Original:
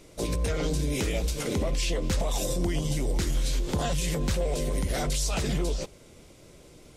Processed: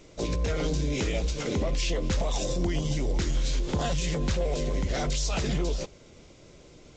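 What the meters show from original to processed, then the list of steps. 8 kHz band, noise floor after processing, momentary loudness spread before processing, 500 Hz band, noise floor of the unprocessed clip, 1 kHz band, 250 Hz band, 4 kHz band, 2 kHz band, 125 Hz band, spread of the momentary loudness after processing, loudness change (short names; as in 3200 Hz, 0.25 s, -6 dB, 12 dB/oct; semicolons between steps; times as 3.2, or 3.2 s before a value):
-3.0 dB, -53 dBFS, 2 LU, 0.0 dB, -52 dBFS, 0.0 dB, 0.0 dB, 0.0 dB, 0.0 dB, 0.0 dB, 2 LU, -0.5 dB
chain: G.722 64 kbps 16000 Hz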